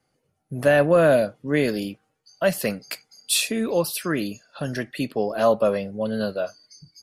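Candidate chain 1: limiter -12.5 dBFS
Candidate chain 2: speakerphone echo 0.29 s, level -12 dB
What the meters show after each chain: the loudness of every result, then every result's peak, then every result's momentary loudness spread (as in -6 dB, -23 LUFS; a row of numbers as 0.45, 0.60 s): -25.0, -23.0 LUFS; -12.5, -6.5 dBFS; 12, 16 LU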